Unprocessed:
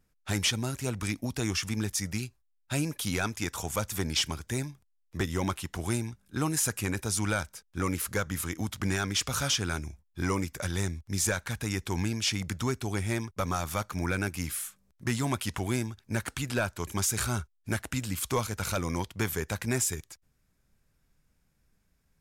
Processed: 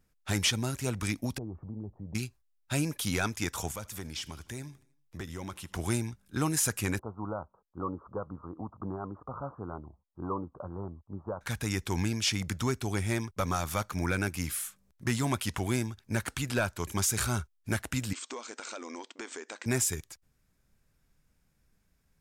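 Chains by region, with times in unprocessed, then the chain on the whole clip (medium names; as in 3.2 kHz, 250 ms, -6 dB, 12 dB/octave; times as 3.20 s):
1.38–2.15 s: steep low-pass 860 Hz + compression 2.5:1, threshold -39 dBFS
3.72–5.74 s: compression 2:1, threshold -43 dBFS + feedback delay 79 ms, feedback 56%, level -22.5 dB
6.99–11.41 s: steep low-pass 1.2 kHz 72 dB/octave + tilt EQ +3 dB/octave
18.13–19.66 s: brick-wall FIR band-pass 230–8600 Hz + compression 4:1, threshold -38 dBFS
whole clip: none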